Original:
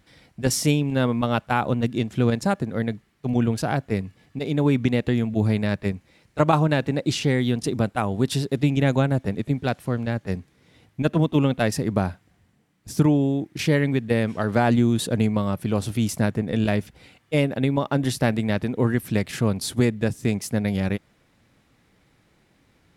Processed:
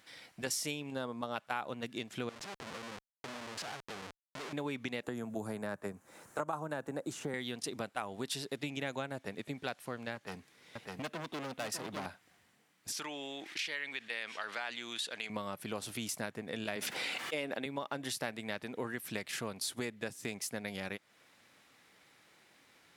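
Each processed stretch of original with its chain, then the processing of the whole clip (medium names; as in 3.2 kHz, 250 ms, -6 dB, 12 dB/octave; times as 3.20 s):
0.91–1.36 s: low-pass 11 kHz + peaking EQ 2.3 kHz -14 dB 0.85 oct
2.29–4.53 s: compression 12:1, threshold -29 dBFS + Schmitt trigger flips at -46 dBFS + distance through air 57 m
5.03–7.34 s: high-order bell 3.2 kHz -14 dB + three bands compressed up and down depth 70%
10.15–12.06 s: hard clipper -23.5 dBFS + delay 604 ms -5.5 dB
12.92–15.30 s: band-pass filter 3 kHz, Q 0.87 + level flattener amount 50%
16.76–17.66 s: high-pass 190 Hz + treble shelf 8.4 kHz -5 dB + level flattener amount 70%
whole clip: high-pass 1 kHz 6 dB/octave; compression 2.5:1, threshold -43 dBFS; trim +3 dB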